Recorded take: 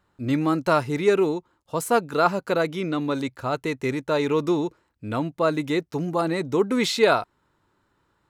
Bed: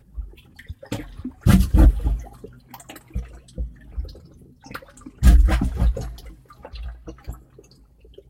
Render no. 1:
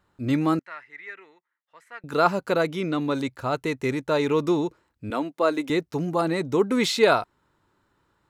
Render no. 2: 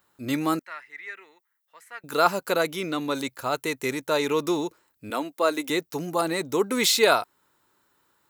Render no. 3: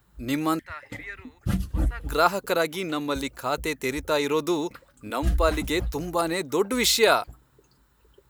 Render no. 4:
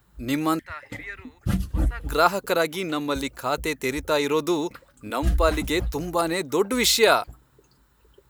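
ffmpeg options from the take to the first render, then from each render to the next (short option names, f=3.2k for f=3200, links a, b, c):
-filter_complex "[0:a]asettb=1/sr,asplit=3[a][b][c];[a]atrim=end=0.594[d];[b]atrim=start=0.59:end=2.04,asetpts=PTS-STARTPTS,afade=t=in:d=0.004:c=qsin,afade=t=out:st=1.446:d=0.004:c=qsin,bandpass=f=1.9k:t=q:w=8.5[e];[c]atrim=start=2.036[f];[d][e]acrossfade=d=0.004:c1=hsin:c2=qsin[g];[g][f]acrossfade=d=0.004:c1=qsin:c2=hsin,asettb=1/sr,asplit=3[h][i][j];[h]atrim=end=5.104[k];[i]atrim=start=5.1:end=5.7,asetpts=PTS-STARTPTS,afade=t=in:d=0.004:c=qsin,afade=t=out:st=0.596:d=0.004:c=qsin,highpass=f=240:w=0.5412,highpass=f=240:w=1.3066[l];[j]atrim=start=5.696[m];[k][l]acrossfade=d=0.004:c1=hsin:c2=qsin[n];[n][m]acrossfade=d=0.004:c1=qsin:c2=hsin"
-af "aemphasis=mode=production:type=bsi"
-filter_complex "[1:a]volume=-11.5dB[a];[0:a][a]amix=inputs=2:normalize=0"
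-af "volume=1.5dB"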